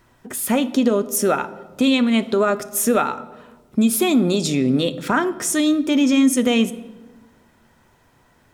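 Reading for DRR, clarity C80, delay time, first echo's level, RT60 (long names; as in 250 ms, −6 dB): 12.0 dB, 18.0 dB, no echo audible, no echo audible, 1.2 s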